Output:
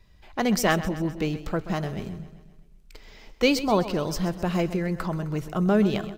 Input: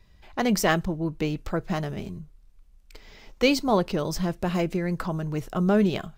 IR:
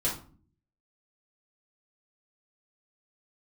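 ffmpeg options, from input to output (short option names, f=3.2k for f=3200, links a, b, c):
-af "aecho=1:1:130|260|390|520|650|780:0.188|0.105|0.0591|0.0331|0.0185|0.0104"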